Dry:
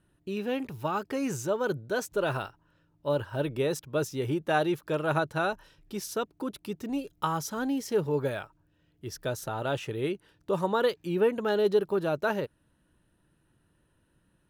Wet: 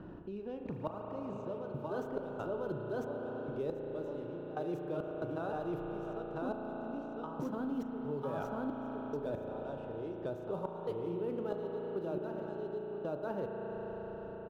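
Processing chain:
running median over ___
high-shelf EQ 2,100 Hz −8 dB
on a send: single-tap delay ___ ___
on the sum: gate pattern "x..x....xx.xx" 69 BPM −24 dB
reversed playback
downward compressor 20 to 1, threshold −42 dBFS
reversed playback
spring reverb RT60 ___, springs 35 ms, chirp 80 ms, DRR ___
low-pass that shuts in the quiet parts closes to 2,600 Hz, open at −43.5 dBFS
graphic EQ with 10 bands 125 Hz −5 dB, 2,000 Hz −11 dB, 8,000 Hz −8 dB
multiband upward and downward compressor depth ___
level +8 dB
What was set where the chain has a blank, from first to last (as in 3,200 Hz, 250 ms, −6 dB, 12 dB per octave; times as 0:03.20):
9 samples, 998 ms, −5.5 dB, 3.9 s, 2 dB, 70%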